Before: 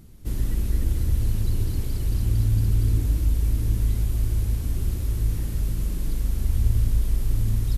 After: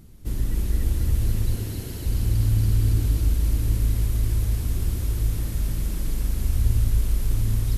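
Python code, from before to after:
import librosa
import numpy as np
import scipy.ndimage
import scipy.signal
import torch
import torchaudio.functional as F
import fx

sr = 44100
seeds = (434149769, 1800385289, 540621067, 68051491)

p1 = fx.notch_comb(x, sr, f0_hz=1200.0, at=(1.55, 2.06))
y = p1 + fx.echo_thinned(p1, sr, ms=280, feedback_pct=77, hz=420.0, wet_db=-3.0, dry=0)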